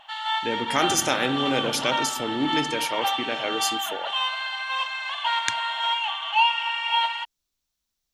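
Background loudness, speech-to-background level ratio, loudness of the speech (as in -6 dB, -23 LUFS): -25.5 LUFS, -1.5 dB, -27.0 LUFS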